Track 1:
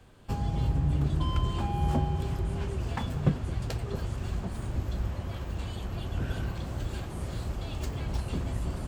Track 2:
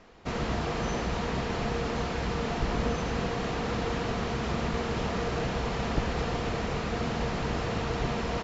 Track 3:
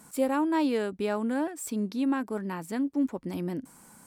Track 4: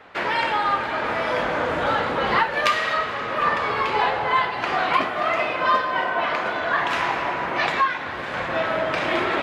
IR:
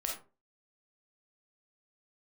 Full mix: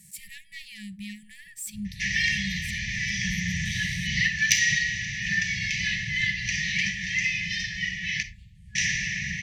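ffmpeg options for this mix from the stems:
-filter_complex "[0:a]lowpass=f=3.6k:p=1,adelay=1450,volume=-15.5dB,asplit=2[a][b];[b]volume=-13dB[c];[2:a]asoftclip=type=tanh:threshold=-24dB,volume=1.5dB,asplit=2[d][e];[e]volume=-19dB[f];[3:a]lowpass=f=5.9k:t=q:w=13,asoftclip=type=tanh:threshold=-2.5dB,equalizer=f=3.8k:w=0.67:g=-8,adelay=1850,volume=2.5dB,asplit=3[g][h][i];[g]atrim=end=8.23,asetpts=PTS-STARTPTS,afade=t=out:st=8.226:d=0.004:c=hsin[j];[h]atrim=start=8.23:end=8.75,asetpts=PTS-STARTPTS,volume=0[k];[i]atrim=start=8.75,asetpts=PTS-STARTPTS,afade=t=in:d=0.004:c=hsin[l];[j][k][l]concat=n=3:v=0:a=1,asplit=2[m][n];[n]volume=-8dB[o];[4:a]atrim=start_sample=2205[p];[c][f][o]amix=inputs=3:normalize=0[q];[q][p]afir=irnorm=-1:irlink=0[r];[a][d][m][r]amix=inputs=4:normalize=0,afftfilt=real='re*(1-between(b*sr/4096,210,1700))':imag='im*(1-between(b*sr/4096,210,1700))':win_size=4096:overlap=0.75"

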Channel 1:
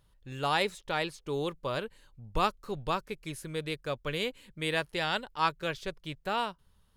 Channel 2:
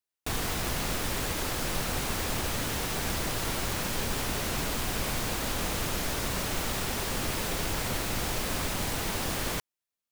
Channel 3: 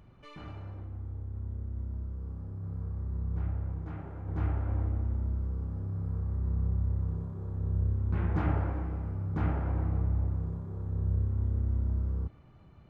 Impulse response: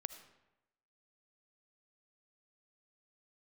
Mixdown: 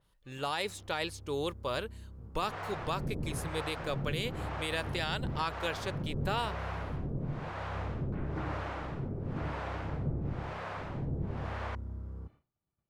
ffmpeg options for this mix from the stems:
-filter_complex "[0:a]adynamicequalizer=threshold=0.00562:dfrequency=3900:dqfactor=0.7:tfrequency=3900:tqfactor=0.7:attack=5:release=100:ratio=0.375:range=2:mode=boostabove:tftype=highshelf,volume=-0.5dB[a];[1:a]acrossover=split=480[b][c];[b]aeval=exprs='val(0)*(1-1/2+1/2*cos(2*PI*1*n/s))':c=same[d];[c]aeval=exprs='val(0)*(1-1/2-1/2*cos(2*PI*1*n/s))':c=same[e];[d][e]amix=inputs=2:normalize=0,lowpass=1.4k,equalizer=f=140:w=3.8:g=14,adelay=2150,volume=0dB[f];[2:a]agate=range=-33dB:threshold=-40dB:ratio=3:detection=peak,volume=-5.5dB[g];[a][f][g]amix=inputs=3:normalize=0,lowshelf=f=160:g=-7,alimiter=limit=-21.5dB:level=0:latency=1:release=76"

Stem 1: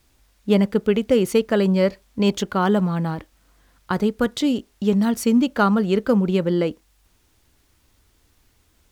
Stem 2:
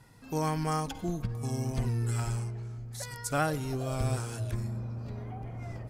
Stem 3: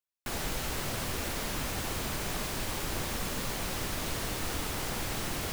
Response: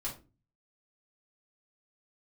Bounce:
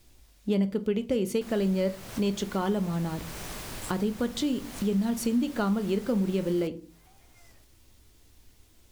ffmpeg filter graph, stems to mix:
-filter_complex "[0:a]equalizer=f=1.3k:w=0.93:g=-6,volume=0dB,asplit=3[a][b][c];[b]volume=-8.5dB[d];[1:a]aderivative,adelay=1750,volume=2.5dB[e];[2:a]adelay=1150,volume=-4.5dB[f];[c]apad=whole_len=337012[g];[e][g]sidechaincompress=threshold=-48dB:ratio=8:attack=16:release=169[h];[3:a]atrim=start_sample=2205[i];[d][i]afir=irnorm=-1:irlink=0[j];[a][h][f][j]amix=inputs=4:normalize=0,acompressor=threshold=-32dB:ratio=2"

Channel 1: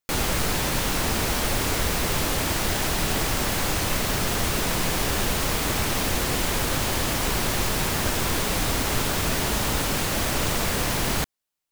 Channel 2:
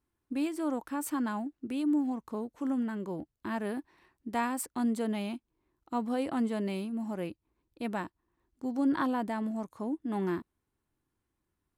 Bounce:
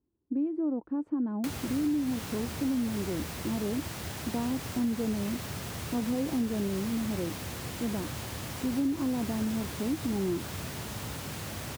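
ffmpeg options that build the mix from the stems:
-filter_complex "[0:a]acrossover=split=170[a][b];[b]acompressor=threshold=-32dB:ratio=5[c];[a][c]amix=inputs=2:normalize=0,highpass=f=77:w=0.5412,highpass=f=77:w=1.3066,adelay=1350,volume=-6.5dB[d];[1:a]bandpass=f=350:t=q:w=1.2:csg=0,aemphasis=mode=reproduction:type=riaa,volume=0.5dB[e];[d][e]amix=inputs=2:normalize=0,acompressor=threshold=-26dB:ratio=6"

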